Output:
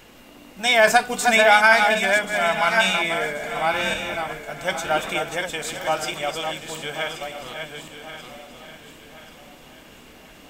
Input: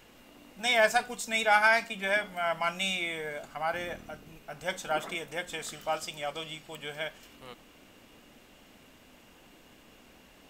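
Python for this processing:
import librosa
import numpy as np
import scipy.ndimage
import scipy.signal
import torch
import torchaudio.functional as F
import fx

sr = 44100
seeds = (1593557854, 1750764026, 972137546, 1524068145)

y = fx.reverse_delay_fb(x, sr, ms=563, feedback_pct=45, wet_db=-6)
y = fx.echo_feedback(y, sr, ms=1081, feedback_pct=42, wet_db=-13.0)
y = fx.band_squash(y, sr, depth_pct=70, at=(0.87, 1.95))
y = F.gain(torch.from_numpy(y), 8.0).numpy()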